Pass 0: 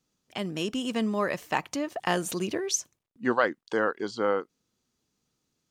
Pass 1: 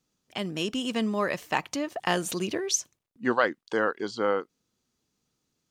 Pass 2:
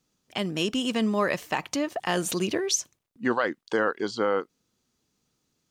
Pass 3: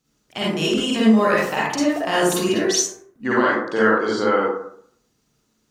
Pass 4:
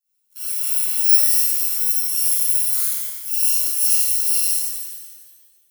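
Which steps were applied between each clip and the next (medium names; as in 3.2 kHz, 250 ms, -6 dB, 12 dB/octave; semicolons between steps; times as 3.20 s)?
dynamic bell 3.6 kHz, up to +3 dB, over -42 dBFS, Q 0.82
peak limiter -16 dBFS, peak gain reduction 6.5 dB; trim +3 dB
reverberation RT60 0.65 s, pre-delay 38 ms, DRR -7 dB
bit-reversed sample order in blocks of 128 samples; pre-emphasis filter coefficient 0.97; pitch-shifted reverb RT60 1.3 s, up +7 st, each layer -2 dB, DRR -8 dB; trim -11.5 dB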